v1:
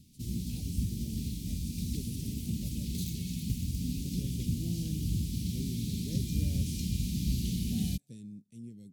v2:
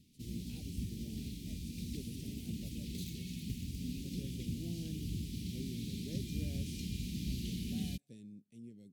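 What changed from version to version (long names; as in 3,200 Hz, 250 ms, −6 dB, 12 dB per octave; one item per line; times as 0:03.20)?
master: add bass and treble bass −9 dB, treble −9 dB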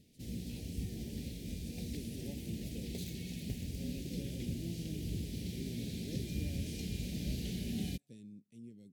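background: remove Chebyshev band-stop filter 270–2,700 Hz, order 2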